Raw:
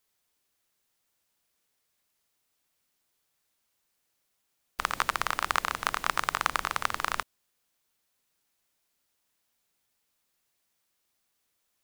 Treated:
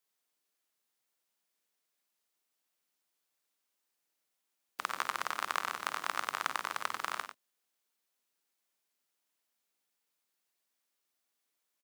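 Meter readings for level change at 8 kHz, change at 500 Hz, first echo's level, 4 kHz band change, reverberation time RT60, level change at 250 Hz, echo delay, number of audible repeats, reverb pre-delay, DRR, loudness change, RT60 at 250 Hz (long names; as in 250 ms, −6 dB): −6.0 dB, −6.5 dB, −10.5 dB, −6.0 dB, no reverb audible, −8.0 dB, 51 ms, 2, no reverb audible, no reverb audible, −6.0 dB, no reverb audible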